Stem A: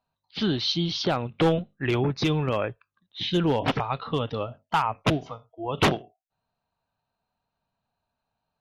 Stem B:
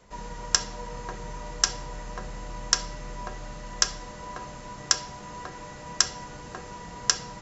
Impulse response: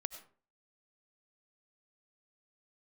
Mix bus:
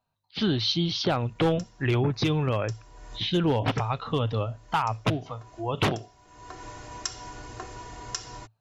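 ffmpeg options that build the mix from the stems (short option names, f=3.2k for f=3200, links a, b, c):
-filter_complex "[0:a]volume=0dB,asplit=2[a][b];[1:a]aecho=1:1:2.8:0.76,adelay=1050,volume=-2dB[c];[b]apad=whole_len=373632[d];[c][d]sidechaincompress=threshold=-49dB:ratio=5:attack=11:release=355[e];[a][e]amix=inputs=2:normalize=0,equalizer=f=110:t=o:w=0.23:g=11.5,alimiter=limit=-15dB:level=0:latency=1:release=210"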